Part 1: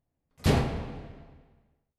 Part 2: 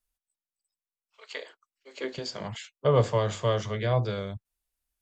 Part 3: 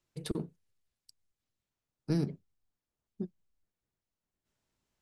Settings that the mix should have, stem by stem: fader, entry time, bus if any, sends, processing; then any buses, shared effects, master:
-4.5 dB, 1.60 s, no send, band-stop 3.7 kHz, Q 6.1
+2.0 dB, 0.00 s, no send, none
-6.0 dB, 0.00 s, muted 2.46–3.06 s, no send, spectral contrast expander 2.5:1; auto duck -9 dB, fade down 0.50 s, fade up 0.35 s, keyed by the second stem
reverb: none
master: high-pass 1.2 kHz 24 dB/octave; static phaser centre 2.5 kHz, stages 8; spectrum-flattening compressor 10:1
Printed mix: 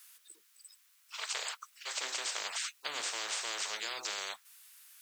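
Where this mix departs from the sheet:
stem 1: muted; master: missing static phaser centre 2.5 kHz, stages 8

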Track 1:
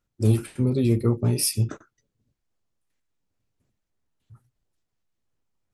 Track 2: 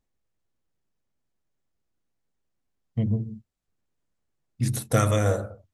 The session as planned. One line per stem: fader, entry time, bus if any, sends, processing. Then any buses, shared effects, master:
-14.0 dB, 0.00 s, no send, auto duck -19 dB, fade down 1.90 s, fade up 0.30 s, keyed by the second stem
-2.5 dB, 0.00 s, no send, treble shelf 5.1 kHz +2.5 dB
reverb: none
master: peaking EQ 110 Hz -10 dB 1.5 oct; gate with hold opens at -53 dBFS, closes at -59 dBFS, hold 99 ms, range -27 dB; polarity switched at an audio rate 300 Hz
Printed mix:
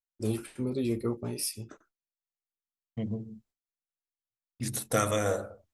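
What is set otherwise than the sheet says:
stem 1 -14.0 dB -> -5.0 dB; master: missing polarity switched at an audio rate 300 Hz

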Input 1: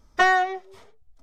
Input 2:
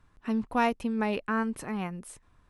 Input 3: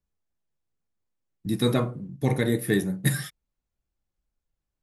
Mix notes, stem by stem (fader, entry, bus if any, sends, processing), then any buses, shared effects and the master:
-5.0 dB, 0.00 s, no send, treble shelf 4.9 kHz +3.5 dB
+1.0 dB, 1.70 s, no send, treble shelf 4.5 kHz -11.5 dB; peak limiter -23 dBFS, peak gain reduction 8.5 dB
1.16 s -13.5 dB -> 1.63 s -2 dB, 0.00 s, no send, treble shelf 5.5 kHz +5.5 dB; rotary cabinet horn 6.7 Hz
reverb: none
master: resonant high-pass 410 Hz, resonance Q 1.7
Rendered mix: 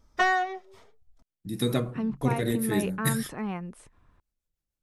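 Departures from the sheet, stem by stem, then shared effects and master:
stem 1: missing treble shelf 4.9 kHz +3.5 dB; master: missing resonant high-pass 410 Hz, resonance Q 1.7

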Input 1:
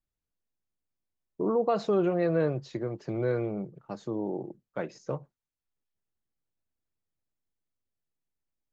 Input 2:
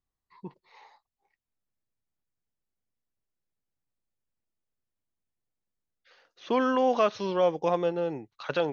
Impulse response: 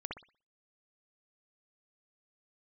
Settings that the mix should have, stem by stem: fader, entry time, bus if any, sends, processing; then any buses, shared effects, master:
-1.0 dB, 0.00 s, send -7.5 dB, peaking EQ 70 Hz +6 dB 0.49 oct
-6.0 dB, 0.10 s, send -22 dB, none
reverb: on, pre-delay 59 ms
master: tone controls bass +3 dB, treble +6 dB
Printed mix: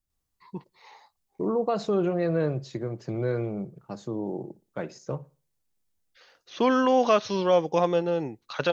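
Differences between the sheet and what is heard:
stem 2 -6.0 dB -> +2.5 dB; reverb return -9.5 dB

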